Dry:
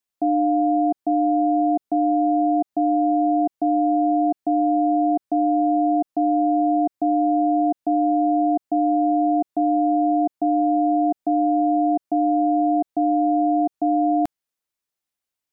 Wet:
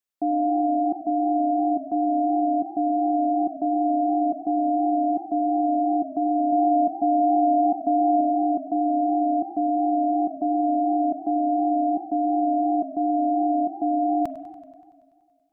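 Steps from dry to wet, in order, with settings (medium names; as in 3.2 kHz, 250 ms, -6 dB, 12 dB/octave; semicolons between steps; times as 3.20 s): 6.52–8.21 s: comb 4.2 ms, depth 55%; spring tank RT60 2.1 s, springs 41/45 ms, chirp 75 ms, DRR 18.5 dB; modulated delay 95 ms, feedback 71%, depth 176 cents, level -16.5 dB; trim -3.5 dB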